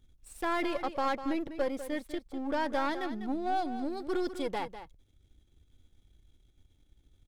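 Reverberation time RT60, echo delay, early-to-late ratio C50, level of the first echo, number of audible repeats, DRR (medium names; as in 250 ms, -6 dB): no reverb, 199 ms, no reverb, -11.5 dB, 1, no reverb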